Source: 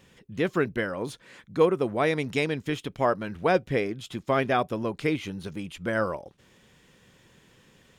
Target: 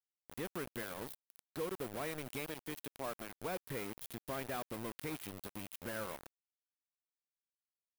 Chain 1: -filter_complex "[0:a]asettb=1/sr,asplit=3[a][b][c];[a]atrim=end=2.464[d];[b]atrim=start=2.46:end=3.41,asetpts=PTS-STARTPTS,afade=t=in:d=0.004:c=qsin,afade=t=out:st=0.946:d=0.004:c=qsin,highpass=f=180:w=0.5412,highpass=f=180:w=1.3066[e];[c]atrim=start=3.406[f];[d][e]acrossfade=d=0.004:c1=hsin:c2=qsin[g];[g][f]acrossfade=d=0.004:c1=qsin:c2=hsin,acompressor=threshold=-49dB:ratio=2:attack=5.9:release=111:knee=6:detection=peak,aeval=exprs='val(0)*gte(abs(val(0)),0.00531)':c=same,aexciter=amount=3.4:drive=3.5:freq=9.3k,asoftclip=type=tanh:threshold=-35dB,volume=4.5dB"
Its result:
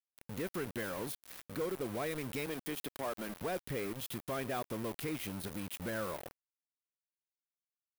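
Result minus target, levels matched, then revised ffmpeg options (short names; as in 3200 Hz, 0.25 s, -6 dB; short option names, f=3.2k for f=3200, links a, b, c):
compressor: peak gain reduction -4.5 dB
-filter_complex "[0:a]asettb=1/sr,asplit=3[a][b][c];[a]atrim=end=2.464[d];[b]atrim=start=2.46:end=3.41,asetpts=PTS-STARTPTS,afade=t=in:d=0.004:c=qsin,afade=t=out:st=0.946:d=0.004:c=qsin,highpass=f=180:w=0.5412,highpass=f=180:w=1.3066[e];[c]atrim=start=3.406[f];[d][e]acrossfade=d=0.004:c1=hsin:c2=qsin[g];[g][f]acrossfade=d=0.004:c1=qsin:c2=hsin,acompressor=threshold=-58.5dB:ratio=2:attack=5.9:release=111:knee=6:detection=peak,aeval=exprs='val(0)*gte(abs(val(0)),0.00531)':c=same,aexciter=amount=3.4:drive=3.5:freq=9.3k,asoftclip=type=tanh:threshold=-35dB,volume=4.5dB"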